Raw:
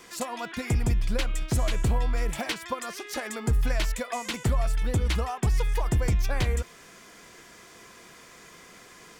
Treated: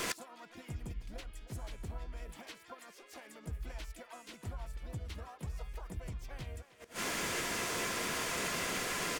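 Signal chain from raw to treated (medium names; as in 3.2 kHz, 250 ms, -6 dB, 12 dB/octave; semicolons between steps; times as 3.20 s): speakerphone echo 310 ms, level -12 dB; inverted gate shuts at -35 dBFS, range -32 dB; harmony voices -5 st -16 dB, +5 st -4 dB, +7 st -15 dB; trim +12 dB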